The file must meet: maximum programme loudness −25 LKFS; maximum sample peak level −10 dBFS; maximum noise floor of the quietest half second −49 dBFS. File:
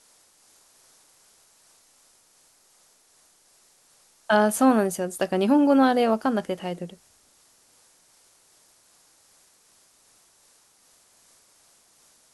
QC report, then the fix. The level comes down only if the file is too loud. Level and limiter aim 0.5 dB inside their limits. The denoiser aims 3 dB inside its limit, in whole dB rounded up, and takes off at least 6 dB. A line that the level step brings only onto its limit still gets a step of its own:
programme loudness −22.0 LKFS: out of spec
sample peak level −7.5 dBFS: out of spec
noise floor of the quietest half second −60 dBFS: in spec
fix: level −3.5 dB

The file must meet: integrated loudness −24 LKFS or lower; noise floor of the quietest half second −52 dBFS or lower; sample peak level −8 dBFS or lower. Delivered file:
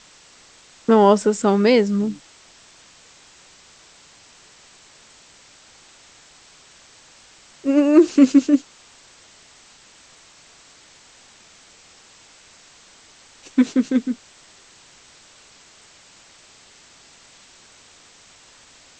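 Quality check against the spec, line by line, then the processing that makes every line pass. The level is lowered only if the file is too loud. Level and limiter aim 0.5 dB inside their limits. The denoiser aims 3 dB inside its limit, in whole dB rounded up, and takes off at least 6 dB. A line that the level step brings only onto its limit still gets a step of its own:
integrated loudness −17.5 LKFS: out of spec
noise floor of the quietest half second −50 dBFS: out of spec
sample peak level −2.5 dBFS: out of spec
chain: level −7 dB

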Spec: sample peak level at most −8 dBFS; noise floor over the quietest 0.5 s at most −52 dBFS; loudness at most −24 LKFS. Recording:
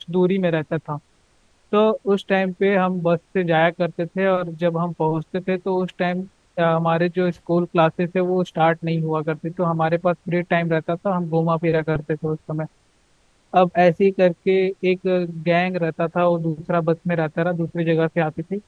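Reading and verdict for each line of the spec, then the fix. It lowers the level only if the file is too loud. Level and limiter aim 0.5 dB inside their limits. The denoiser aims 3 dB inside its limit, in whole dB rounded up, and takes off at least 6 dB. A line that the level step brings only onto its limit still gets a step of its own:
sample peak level −3.0 dBFS: out of spec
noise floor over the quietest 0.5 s −59 dBFS: in spec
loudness −21.0 LKFS: out of spec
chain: level −3.5 dB
brickwall limiter −8.5 dBFS

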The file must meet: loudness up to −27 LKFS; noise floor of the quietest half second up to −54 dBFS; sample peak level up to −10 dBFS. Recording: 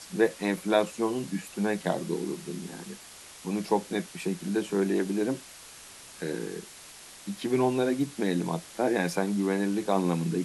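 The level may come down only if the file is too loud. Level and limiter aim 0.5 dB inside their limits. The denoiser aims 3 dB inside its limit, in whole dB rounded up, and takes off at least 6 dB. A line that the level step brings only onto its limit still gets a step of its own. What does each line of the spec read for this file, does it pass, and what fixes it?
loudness −29.0 LKFS: in spec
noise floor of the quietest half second −48 dBFS: out of spec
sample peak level −9.5 dBFS: out of spec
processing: broadband denoise 9 dB, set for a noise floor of −48 dBFS
brickwall limiter −10.5 dBFS

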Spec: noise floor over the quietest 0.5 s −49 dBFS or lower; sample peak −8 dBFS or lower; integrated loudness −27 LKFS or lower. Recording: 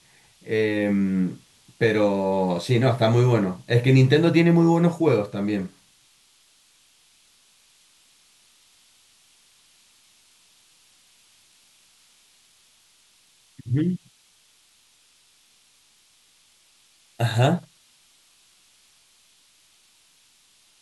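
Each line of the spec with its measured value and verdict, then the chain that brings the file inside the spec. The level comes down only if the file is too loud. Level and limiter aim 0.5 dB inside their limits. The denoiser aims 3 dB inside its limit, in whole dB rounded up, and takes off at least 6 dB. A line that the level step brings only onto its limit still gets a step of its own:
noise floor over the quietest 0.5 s −60 dBFS: in spec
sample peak −4.5 dBFS: out of spec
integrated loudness −21.5 LKFS: out of spec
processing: level −6 dB

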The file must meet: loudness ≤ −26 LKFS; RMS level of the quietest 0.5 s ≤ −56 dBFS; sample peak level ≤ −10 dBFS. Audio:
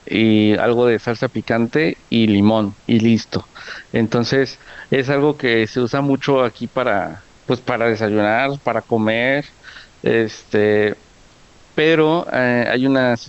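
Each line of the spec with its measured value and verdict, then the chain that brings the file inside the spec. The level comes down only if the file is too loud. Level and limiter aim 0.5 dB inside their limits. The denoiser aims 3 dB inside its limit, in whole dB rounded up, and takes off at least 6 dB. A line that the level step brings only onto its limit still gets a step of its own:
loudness −17.5 LKFS: out of spec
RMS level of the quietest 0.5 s −48 dBFS: out of spec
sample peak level −4.0 dBFS: out of spec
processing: level −9 dB

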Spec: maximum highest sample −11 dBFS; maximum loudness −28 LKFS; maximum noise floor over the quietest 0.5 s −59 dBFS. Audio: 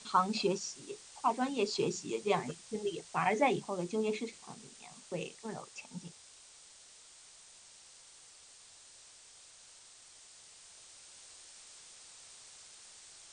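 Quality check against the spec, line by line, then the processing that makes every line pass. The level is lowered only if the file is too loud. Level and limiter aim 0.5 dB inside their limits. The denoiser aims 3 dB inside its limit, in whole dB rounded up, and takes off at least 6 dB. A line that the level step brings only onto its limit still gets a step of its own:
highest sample −15.5 dBFS: in spec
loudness −35.0 LKFS: in spec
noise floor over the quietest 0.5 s −57 dBFS: out of spec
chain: broadband denoise 6 dB, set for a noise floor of −57 dBFS

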